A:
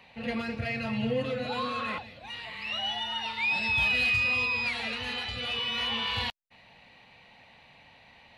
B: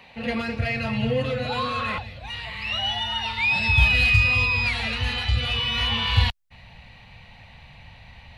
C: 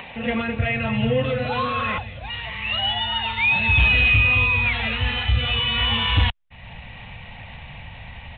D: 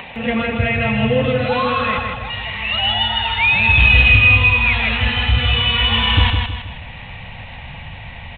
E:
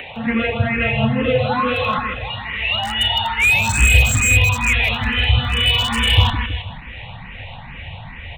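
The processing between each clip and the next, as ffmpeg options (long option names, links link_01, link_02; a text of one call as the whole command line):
ffmpeg -i in.wav -af "asubboost=boost=11:cutoff=97,volume=6dB" out.wav
ffmpeg -i in.wav -af "acompressor=mode=upward:threshold=-33dB:ratio=2.5,aresample=8000,asoftclip=type=hard:threshold=-15dB,aresample=44100,volume=3dB" out.wav
ffmpeg -i in.wav -af "aecho=1:1:159|318|477|636|795:0.596|0.244|0.1|0.0411|0.0168,volume=4dB" out.wav
ffmpeg -i in.wav -filter_complex "[0:a]acrossover=split=200|860[link_01][link_02][link_03];[link_03]aeval=exprs='0.251*(abs(mod(val(0)/0.251+3,4)-2)-1)':channel_layout=same[link_04];[link_01][link_02][link_04]amix=inputs=3:normalize=0,asplit=2[link_05][link_06];[link_06]afreqshift=2.3[link_07];[link_05][link_07]amix=inputs=2:normalize=1,volume=2.5dB" out.wav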